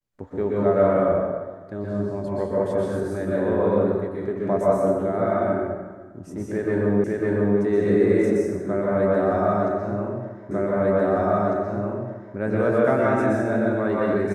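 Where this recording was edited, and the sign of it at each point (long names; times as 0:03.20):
0:07.04: the same again, the last 0.55 s
0:10.51: the same again, the last 1.85 s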